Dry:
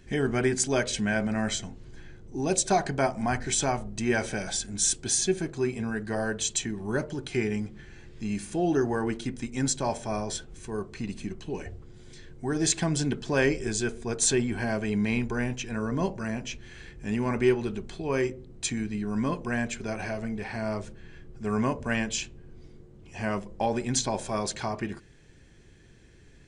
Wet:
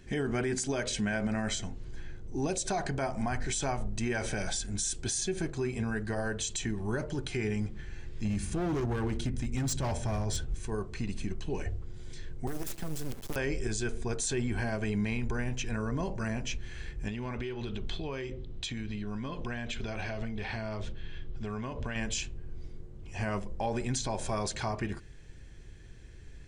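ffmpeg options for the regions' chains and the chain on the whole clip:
-filter_complex "[0:a]asettb=1/sr,asplit=3[s0][s1][s2];[s0]atrim=end=8.254[s3];[s1]atrim=start=8.25:end=10.55,asetpts=PTS-STARTPTS,afade=t=in:d=0.004:c=qsin,afade=t=out:st=2.296:d=0.004:c=qsin,volume=22.4,asoftclip=hard,volume=0.0447,equalizer=f=81:w=0.49:g=9[s4];[s2]atrim=start=10.546[s5];[s3][s4]acrossfade=d=0.004:c1=hsin:c2=qsin[s6];[s6][s5]acrossfade=d=0.004:c1=qsin:c2=hsin,asettb=1/sr,asplit=3[s7][s8][s9];[s7]atrim=end=12.474[s10];[s8]atrim=start=12.47:end=13.36,asetpts=PTS-STARTPTS,afade=t=in:d=0.004:c=qsin,afade=t=out:st=0.886:d=0.004:c=qsin,acrusher=bits=4:dc=4:mix=0:aa=0.000001,aeval=exprs='(mod(7.94*val(0)+1,2)-1)/7.94':c=same,acrossover=split=94|550|7600[s11][s12][s13][s14];[s11]acompressor=threshold=0.00562:ratio=3[s15];[s12]acompressor=threshold=0.0141:ratio=3[s16];[s13]acompressor=threshold=0.00398:ratio=3[s17];[s14]acompressor=threshold=0.0112:ratio=3[s18];[s15][s16][s17][s18]amix=inputs=4:normalize=0[s19];[s9]atrim=start=13.356[s20];[s10][s19]acrossfade=d=0.004:c1=hsin:c2=qsin[s21];[s21][s20]acrossfade=d=0.004:c1=qsin:c2=hsin,asettb=1/sr,asplit=3[s22][s23][s24];[s22]atrim=end=17.084[s25];[s23]atrim=start=17.08:end=21.96,asetpts=PTS-STARTPTS,afade=t=in:d=0.004:c=qsin,afade=t=out:st=4.876:d=0.004:c=qsin,lowpass=5800,equalizer=f=3400:t=o:w=0.58:g=10.5,acompressor=threshold=0.0251:ratio=12:attack=3.2:release=140:knee=1:detection=peak[s26];[s24]atrim=start=21.956[s27];[s25][s26]acrossfade=d=0.004:c1=hsin:c2=qsin[s28];[s28][s27]acrossfade=d=0.004:c1=qsin:c2=hsin,asubboost=boost=2.5:cutoff=110,alimiter=limit=0.0708:level=0:latency=1:release=70"

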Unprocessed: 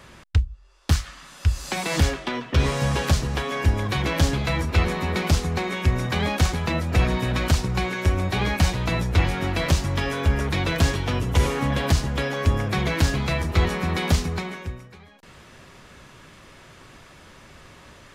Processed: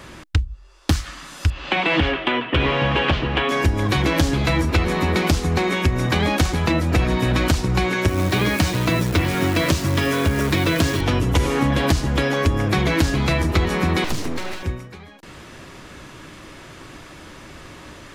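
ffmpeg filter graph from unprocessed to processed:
-filter_complex "[0:a]asettb=1/sr,asplit=3[s0][s1][s2];[s0]atrim=end=1.504[s3];[s1]atrim=start=1.5:end=3.49,asetpts=PTS-STARTPTS,afade=t=in:d=0.004:c=qsin,afade=t=out:st=1.986:d=0.004:c=qsin,lowpass=f=3000:t=q:w=3.5,asplit=2[s4][s5];[s5]highpass=f=720:p=1,volume=2.82,asoftclip=type=tanh:threshold=0.473[s6];[s4][s6]amix=inputs=2:normalize=0,lowpass=f=1100:p=1,volume=0.501[s7];[s2]atrim=start=3.486[s8];[s3][s7]acrossfade=d=0.004:c1=hsin:c2=qsin[s9];[s9][s8]acrossfade=d=0.004:c1=qsin:c2=hsin,asettb=1/sr,asplit=3[s10][s11][s12];[s10]atrim=end=8.084[s13];[s11]atrim=start=8.08:end=11.01,asetpts=PTS-STARTPTS,afade=t=in:d=0.004:c=qsin,afade=t=out:st=2.926:d=0.004:c=qsin,highpass=f=80:w=0.5412,highpass=f=80:w=1.3066,bandreject=f=810:w=7.8,acrusher=bits=7:dc=4:mix=0:aa=0.000001[s14];[s12]atrim=start=11.006[s15];[s13][s14]acrossfade=d=0.004:c1=hsin:c2=qsin[s16];[s16][s15]acrossfade=d=0.004:c1=qsin:c2=hsin,asettb=1/sr,asplit=3[s17][s18][s19];[s17]atrim=end=14.044[s20];[s18]atrim=start=14.04:end=14.63,asetpts=PTS-STARTPTS,afade=t=in:d=0.004:c=qsin,afade=t=out:st=0.586:d=0.004:c=qsin,aeval=exprs='abs(val(0))':c=same,acompressor=threshold=0.0398:ratio=2.5:attack=3.2:release=140:knee=1:detection=peak[s21];[s19]atrim=start=14.626[s22];[s20][s21]acrossfade=d=0.004:c1=hsin:c2=qsin[s23];[s23][s22]acrossfade=d=0.004:c1=qsin:c2=hsin,equalizer=f=310:t=o:w=0.31:g=8,acompressor=threshold=0.0891:ratio=6,volume=2.11"

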